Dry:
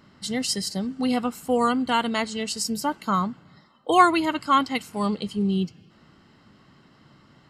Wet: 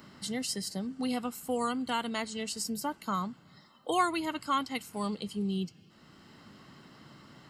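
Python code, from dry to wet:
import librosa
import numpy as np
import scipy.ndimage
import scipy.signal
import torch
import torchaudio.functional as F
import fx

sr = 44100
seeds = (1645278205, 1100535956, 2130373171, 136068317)

y = fx.high_shelf(x, sr, hz=8200.0, db=10.0)
y = fx.band_squash(y, sr, depth_pct=40)
y = y * 10.0 ** (-9.0 / 20.0)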